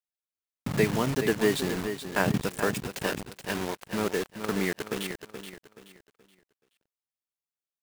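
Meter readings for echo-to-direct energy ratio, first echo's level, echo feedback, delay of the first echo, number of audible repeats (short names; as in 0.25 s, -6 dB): -8.5 dB, -9.0 dB, 32%, 0.426 s, 3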